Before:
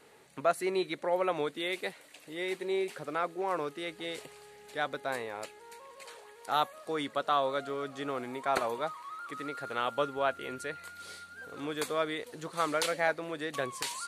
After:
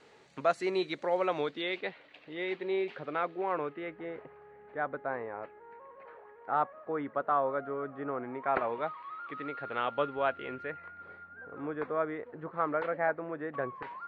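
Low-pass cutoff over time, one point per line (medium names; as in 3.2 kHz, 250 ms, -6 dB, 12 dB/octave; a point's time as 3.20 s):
low-pass 24 dB/octave
1.27 s 6.6 kHz
1.83 s 3.5 kHz
3.37 s 3.5 kHz
4.11 s 1.7 kHz
8.17 s 1.7 kHz
8.93 s 3 kHz
10.42 s 3 kHz
11.03 s 1.7 kHz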